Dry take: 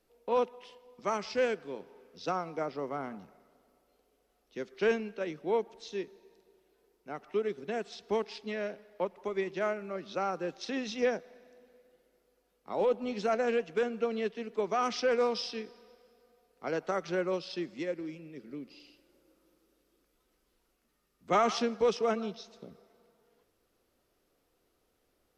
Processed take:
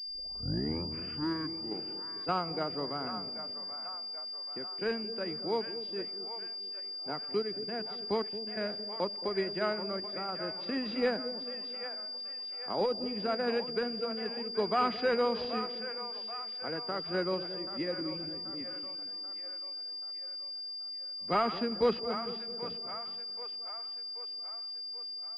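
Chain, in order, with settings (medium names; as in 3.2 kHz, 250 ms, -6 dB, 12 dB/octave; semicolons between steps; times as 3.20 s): tape start-up on the opening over 2.02 s; dynamic bell 530 Hz, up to -5 dB, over -42 dBFS, Q 0.9; random-step tremolo, depth 75%; on a send: two-band feedback delay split 570 Hz, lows 223 ms, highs 782 ms, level -10 dB; on the sum: class-D stage that switches slowly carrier 4.8 kHz; trim +4.5 dB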